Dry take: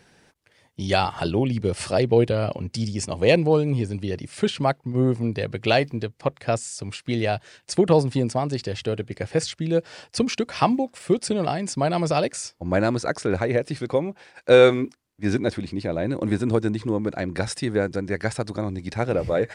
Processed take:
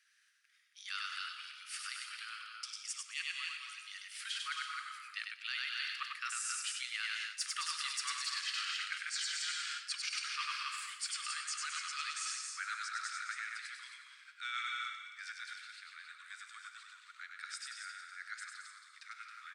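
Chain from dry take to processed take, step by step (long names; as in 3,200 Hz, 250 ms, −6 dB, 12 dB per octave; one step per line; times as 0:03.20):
source passing by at 0:07.98, 14 m/s, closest 5.2 metres
Butterworth high-pass 1,200 Hz 96 dB per octave
reverb whose tail is shaped and stops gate 400 ms flat, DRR 8 dB
in parallel at −3.5 dB: soft clipping −28 dBFS, distortion −20 dB
on the sum: loudspeakers that aren't time-aligned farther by 34 metres −4 dB, 75 metres −10 dB, 93 metres −8 dB
reversed playback
downward compressor 10 to 1, threshold −45 dBFS, peak gain reduction 17 dB
reversed playback
level +9.5 dB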